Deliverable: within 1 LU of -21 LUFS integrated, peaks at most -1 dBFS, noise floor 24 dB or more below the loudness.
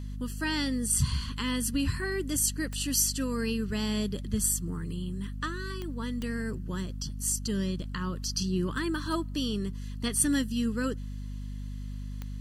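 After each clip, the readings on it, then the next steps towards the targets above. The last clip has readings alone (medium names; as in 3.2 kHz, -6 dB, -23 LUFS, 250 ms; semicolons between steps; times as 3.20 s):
clicks found 4; hum 50 Hz; highest harmonic 250 Hz; hum level -34 dBFS; loudness -30.5 LUFS; peak level -10.0 dBFS; loudness target -21.0 LUFS
-> de-click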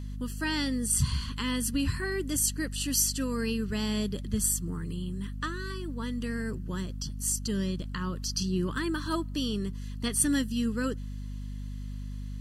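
clicks found 0; hum 50 Hz; highest harmonic 250 Hz; hum level -34 dBFS
-> hum notches 50/100/150/200/250 Hz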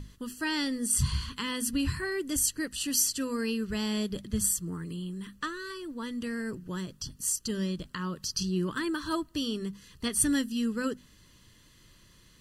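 hum not found; loudness -31.0 LUFS; peak level -10.0 dBFS; loudness target -21.0 LUFS
-> trim +10 dB; peak limiter -1 dBFS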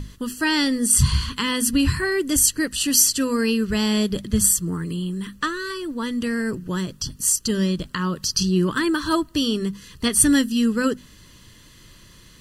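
loudness -21.0 LUFS; peak level -1.0 dBFS; noise floor -49 dBFS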